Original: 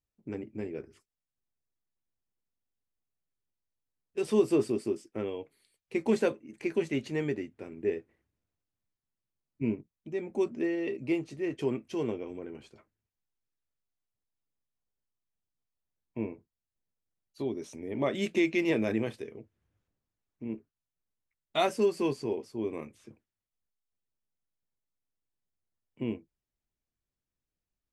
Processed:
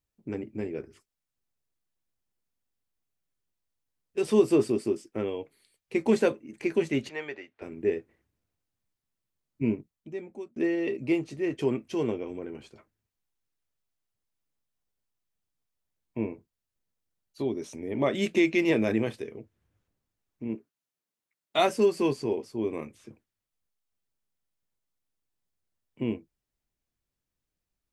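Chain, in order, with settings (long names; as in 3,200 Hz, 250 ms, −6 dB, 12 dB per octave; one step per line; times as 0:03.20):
0:07.09–0:07.62: three-way crossover with the lows and the highs turned down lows −22 dB, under 550 Hz, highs −23 dB, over 5,200 Hz
0:09.77–0:10.56: fade out
0:20.55–0:21.59: high-pass filter 200 Hz 12 dB per octave
level +3.5 dB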